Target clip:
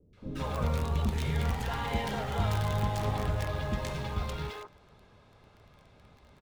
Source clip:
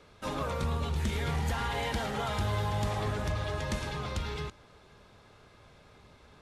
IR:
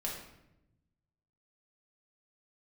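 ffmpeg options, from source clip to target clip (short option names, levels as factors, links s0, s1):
-filter_complex "[0:a]highshelf=f=3900:g=-9.5,asplit=2[s0][s1];[s1]acrusher=bits=5:dc=4:mix=0:aa=0.000001,volume=0.422[s2];[s0][s2]amix=inputs=2:normalize=0,acrossover=split=400|1500[s3][s4][s5];[s5]adelay=130[s6];[s4]adelay=170[s7];[s3][s7][s6]amix=inputs=3:normalize=0"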